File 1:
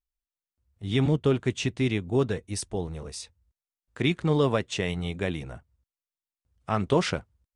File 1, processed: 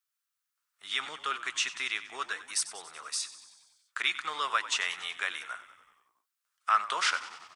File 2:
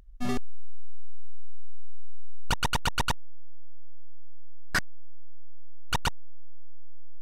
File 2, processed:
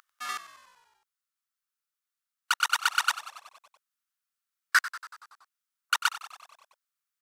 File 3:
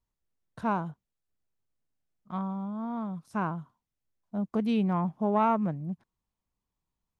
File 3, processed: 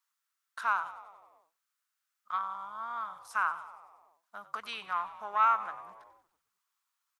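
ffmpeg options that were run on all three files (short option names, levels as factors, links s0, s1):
-filter_complex "[0:a]highshelf=f=2400:g=9.5,asplit=2[s0][s1];[s1]acompressor=threshold=0.0251:ratio=6,volume=1.41[s2];[s0][s2]amix=inputs=2:normalize=0,highpass=f=1300:t=q:w=3.9,asplit=8[s3][s4][s5][s6][s7][s8][s9][s10];[s4]adelay=94,afreqshift=-51,volume=0.178[s11];[s5]adelay=188,afreqshift=-102,volume=0.112[s12];[s6]adelay=282,afreqshift=-153,volume=0.0708[s13];[s7]adelay=376,afreqshift=-204,volume=0.0447[s14];[s8]adelay=470,afreqshift=-255,volume=0.0279[s15];[s9]adelay=564,afreqshift=-306,volume=0.0176[s16];[s10]adelay=658,afreqshift=-357,volume=0.0111[s17];[s3][s11][s12][s13][s14][s15][s16][s17]amix=inputs=8:normalize=0,volume=0.398"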